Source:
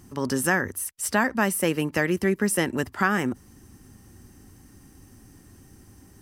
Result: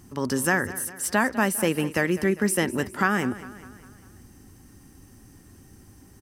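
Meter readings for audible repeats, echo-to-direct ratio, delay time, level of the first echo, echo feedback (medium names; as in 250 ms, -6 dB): 4, -14.5 dB, 201 ms, -16.0 dB, 52%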